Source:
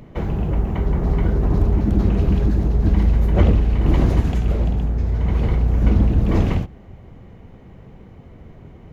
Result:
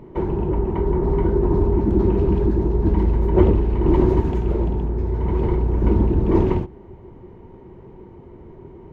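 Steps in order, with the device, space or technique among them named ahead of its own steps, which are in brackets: inside a helmet (treble shelf 3 kHz -10 dB; small resonant body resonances 370/920 Hz, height 16 dB, ringing for 50 ms); trim -3 dB

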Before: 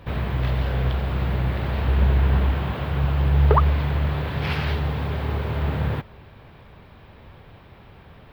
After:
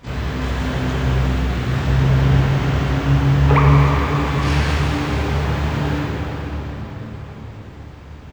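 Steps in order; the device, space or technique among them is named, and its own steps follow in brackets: 1.28–1.72 s: elliptic band-stop 460–1100 Hz; dynamic bell 1.4 kHz, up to +3 dB, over -41 dBFS, Q 1.2; shimmer-style reverb (harmony voices +12 st -5 dB; reverberation RT60 5.1 s, pre-delay 18 ms, DRR -4 dB); trim -2 dB

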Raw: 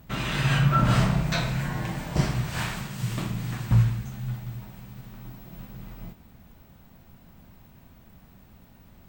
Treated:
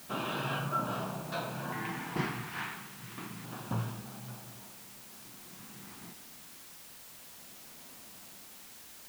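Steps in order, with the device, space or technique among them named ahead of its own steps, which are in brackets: shortwave radio (band-pass 300–2500 Hz; tremolo 0.5 Hz, depth 60%; LFO notch square 0.29 Hz 580–2000 Hz; white noise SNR 11 dB); trim +1 dB

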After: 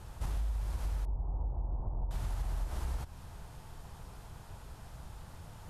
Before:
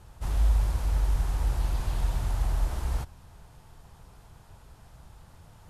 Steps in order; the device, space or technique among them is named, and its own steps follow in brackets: serial compression, peaks first (compression 5:1, threshold -31 dBFS, peak gain reduction 11.5 dB; compression 1.5:1, threshold -41 dBFS, peak gain reduction 4.5 dB); 1.05–2.11 s: steep low-pass 970 Hz 36 dB/octave; trim +3 dB

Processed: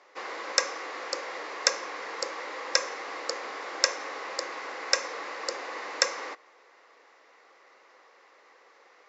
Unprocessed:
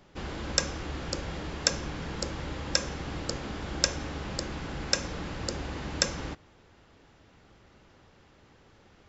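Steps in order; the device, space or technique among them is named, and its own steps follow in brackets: phone speaker on a table (cabinet simulation 370–6800 Hz, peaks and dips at 500 Hz +7 dB, 750 Hz +3 dB, 1.1 kHz +10 dB, 2 kHz +9 dB, 3.2 kHz -6 dB); tilt EQ +1.5 dB/octave; trim -1 dB

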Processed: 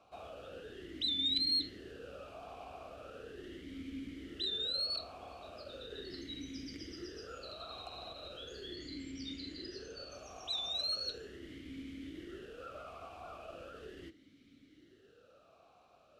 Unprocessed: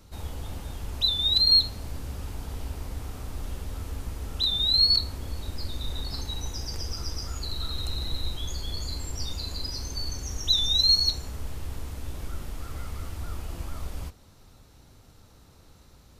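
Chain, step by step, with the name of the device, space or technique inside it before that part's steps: talk box (valve stage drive 15 dB, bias 0.3; talking filter a-i 0.38 Hz); 8.75–10.11 s: low-pass 8.8 kHz; trim +8.5 dB

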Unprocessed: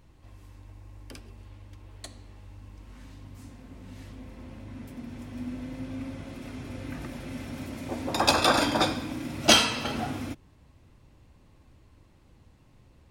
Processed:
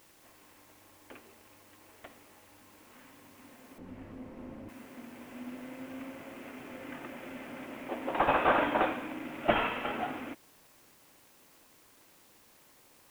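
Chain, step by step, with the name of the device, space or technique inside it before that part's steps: army field radio (band-pass 350–3100 Hz; CVSD coder 16 kbps; white noise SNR 25 dB); 3.78–4.69 s: tilt EQ -4 dB/octave

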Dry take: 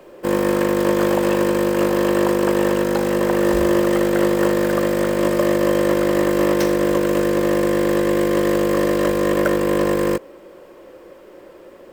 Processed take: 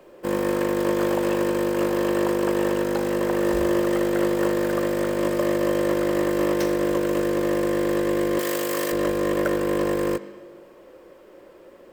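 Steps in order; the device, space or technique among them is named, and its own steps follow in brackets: filtered reverb send (on a send: high-pass 190 Hz + low-pass 5.3 kHz + reverberation RT60 1.3 s, pre-delay 82 ms, DRR 14 dB); 8.39–8.92 s: on the sum: tilt EQ +3 dB/octave; trim -5.5 dB

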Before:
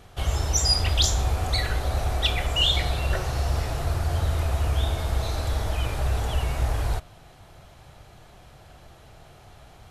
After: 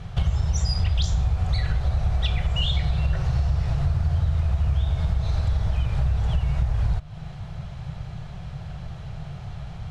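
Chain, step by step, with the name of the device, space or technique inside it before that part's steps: jukebox (low-pass 5.4 kHz 12 dB/octave; resonant low shelf 210 Hz +8.5 dB, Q 3; compression 5:1, threshold -26 dBFS, peak gain reduction 15 dB); trim +5.5 dB

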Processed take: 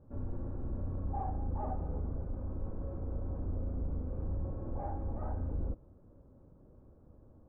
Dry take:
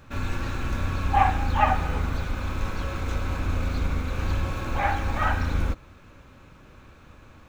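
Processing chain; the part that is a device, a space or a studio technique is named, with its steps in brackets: overdriven synthesiser ladder filter (saturation -19.5 dBFS, distortion -13 dB; four-pole ladder low-pass 760 Hz, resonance 20%); trim -3 dB

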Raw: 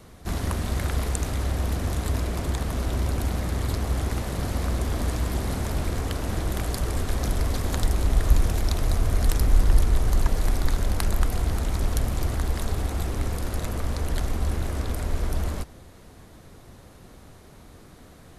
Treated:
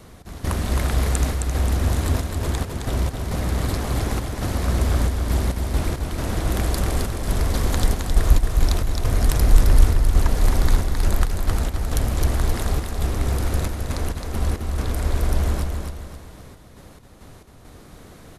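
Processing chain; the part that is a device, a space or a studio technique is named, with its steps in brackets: trance gate with a delay (trance gate "x.xxxx.xxx.x." 68 bpm -12 dB; feedback delay 265 ms, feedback 40%, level -4.5 dB); trim +3.5 dB

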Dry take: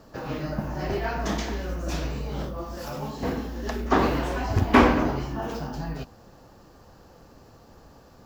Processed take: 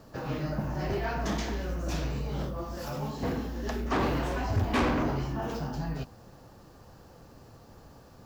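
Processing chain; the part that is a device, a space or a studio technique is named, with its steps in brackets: open-reel tape (saturation -21 dBFS, distortion -7 dB; peaking EQ 120 Hz +4.5 dB 0.92 oct; white noise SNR 41 dB); trim -2 dB

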